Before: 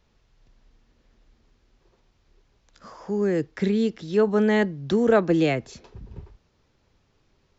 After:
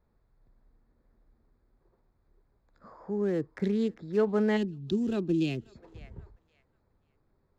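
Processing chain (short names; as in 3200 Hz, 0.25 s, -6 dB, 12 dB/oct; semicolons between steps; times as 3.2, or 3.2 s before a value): Wiener smoothing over 15 samples; thinning echo 0.536 s, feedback 24%, high-pass 1100 Hz, level -21 dB; spectral gain 4.57–5.75, 430–2400 Hz -15 dB; gain -5.5 dB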